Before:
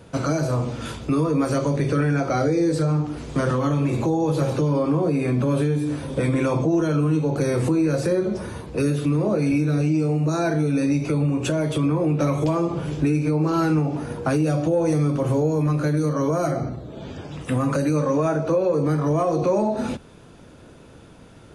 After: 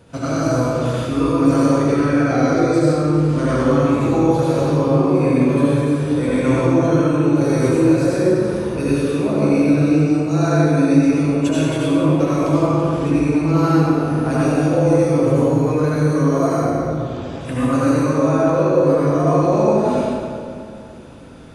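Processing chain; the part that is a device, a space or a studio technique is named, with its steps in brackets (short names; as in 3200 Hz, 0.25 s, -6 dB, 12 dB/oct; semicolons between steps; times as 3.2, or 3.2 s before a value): stairwell (reverb RT60 2.4 s, pre-delay 69 ms, DRR -8 dB); gain -3 dB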